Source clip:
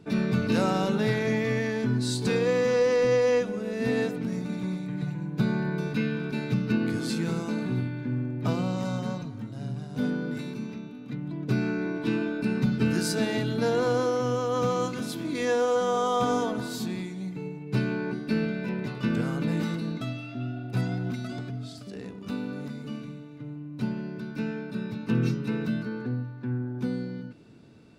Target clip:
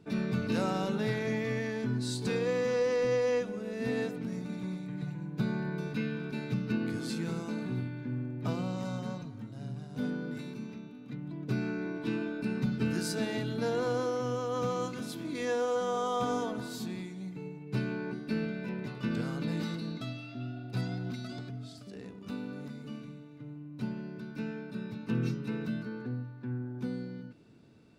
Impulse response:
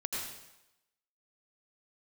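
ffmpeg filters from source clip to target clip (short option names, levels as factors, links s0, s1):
-filter_complex "[0:a]asettb=1/sr,asplit=3[s0][s1][s2];[s0]atrim=end=19.114[s3];[s1]atrim=start=19.11:end=21.49,asetpts=PTS-STARTPTS,afade=t=in:d=0.004:c=qsin,afade=t=out:st=2.376:d=0.004:c=qsin,equalizer=f=4400:w=2.1:g=6.5[s4];[s2]atrim=start=21.486[s5];[s3][s4]acrossfade=d=0.004:c1=hsin:c2=qsin[s6];[s6][s5]acrossfade=d=0.004:c1=qsin:c2=hsin,volume=0.501"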